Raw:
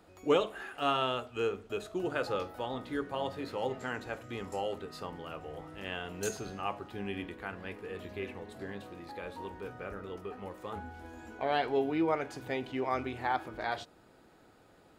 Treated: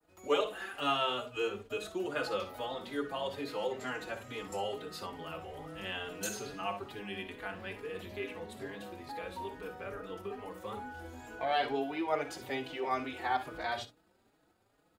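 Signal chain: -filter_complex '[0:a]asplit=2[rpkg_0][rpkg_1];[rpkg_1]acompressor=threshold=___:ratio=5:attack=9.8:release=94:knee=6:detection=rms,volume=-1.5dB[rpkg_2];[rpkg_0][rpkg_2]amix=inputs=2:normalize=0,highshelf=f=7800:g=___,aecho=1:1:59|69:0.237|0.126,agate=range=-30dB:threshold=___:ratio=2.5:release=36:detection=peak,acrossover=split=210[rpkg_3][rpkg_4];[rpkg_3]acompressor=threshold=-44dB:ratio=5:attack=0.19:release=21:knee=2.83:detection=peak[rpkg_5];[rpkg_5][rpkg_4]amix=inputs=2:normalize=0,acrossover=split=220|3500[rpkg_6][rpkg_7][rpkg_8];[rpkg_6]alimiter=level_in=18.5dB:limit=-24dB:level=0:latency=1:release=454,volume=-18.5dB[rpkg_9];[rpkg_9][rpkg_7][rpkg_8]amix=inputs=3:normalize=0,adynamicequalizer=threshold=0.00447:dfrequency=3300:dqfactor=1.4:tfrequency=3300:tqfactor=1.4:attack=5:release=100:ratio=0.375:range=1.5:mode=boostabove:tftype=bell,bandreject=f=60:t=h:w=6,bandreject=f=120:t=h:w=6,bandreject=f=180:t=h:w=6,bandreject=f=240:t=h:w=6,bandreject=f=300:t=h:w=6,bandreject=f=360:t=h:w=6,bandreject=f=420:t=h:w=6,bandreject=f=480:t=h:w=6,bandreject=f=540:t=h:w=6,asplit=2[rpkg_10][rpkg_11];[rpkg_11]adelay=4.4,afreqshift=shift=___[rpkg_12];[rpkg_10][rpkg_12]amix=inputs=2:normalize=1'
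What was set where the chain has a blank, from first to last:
-45dB, 6, -47dB, 2.3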